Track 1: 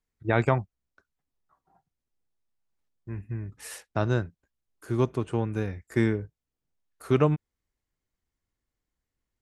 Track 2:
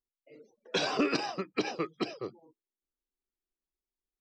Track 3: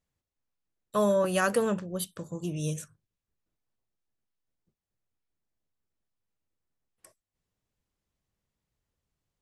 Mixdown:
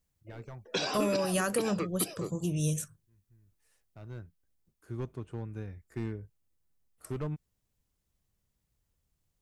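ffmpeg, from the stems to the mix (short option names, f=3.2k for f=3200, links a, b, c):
-filter_complex "[0:a]asoftclip=type=hard:threshold=-17dB,volume=-14.5dB,afade=t=in:st=3.79:d=0.64:silence=0.354813[a];[1:a]volume=-1.5dB[b];[2:a]volume=-1dB,asplit=2[c][d];[d]apad=whole_len=415148[e];[a][e]sidechaincompress=threshold=-48dB:ratio=6:attack=16:release=1370[f];[b][c]amix=inputs=2:normalize=0,highshelf=f=6.1k:g=9.5,acompressor=threshold=-28dB:ratio=3,volume=0dB[g];[f][g]amix=inputs=2:normalize=0,lowshelf=f=150:g=9"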